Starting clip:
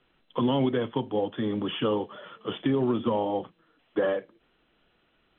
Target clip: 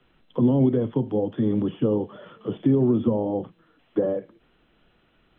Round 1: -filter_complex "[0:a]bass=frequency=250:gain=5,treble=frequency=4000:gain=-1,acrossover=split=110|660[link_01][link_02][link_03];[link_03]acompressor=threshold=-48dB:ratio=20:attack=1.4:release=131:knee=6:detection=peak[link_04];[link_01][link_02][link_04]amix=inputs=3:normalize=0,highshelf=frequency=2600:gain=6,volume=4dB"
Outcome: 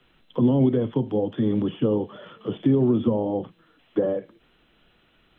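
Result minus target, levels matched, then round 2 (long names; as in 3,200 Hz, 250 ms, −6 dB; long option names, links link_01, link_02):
4,000 Hz band +5.0 dB
-filter_complex "[0:a]bass=frequency=250:gain=5,treble=frequency=4000:gain=-1,acrossover=split=110|660[link_01][link_02][link_03];[link_03]acompressor=threshold=-48dB:ratio=20:attack=1.4:release=131:knee=6:detection=peak[link_04];[link_01][link_02][link_04]amix=inputs=3:normalize=0,highshelf=frequency=2600:gain=-2.5,volume=4dB"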